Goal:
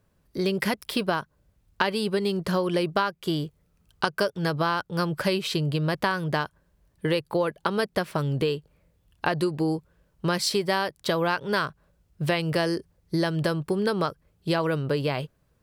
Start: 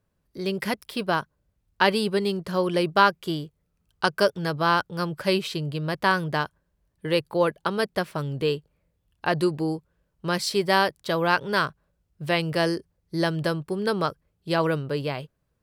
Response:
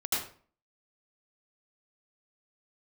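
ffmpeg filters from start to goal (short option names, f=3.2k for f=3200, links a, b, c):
-af "acompressor=threshold=-29dB:ratio=6,volume=7dB"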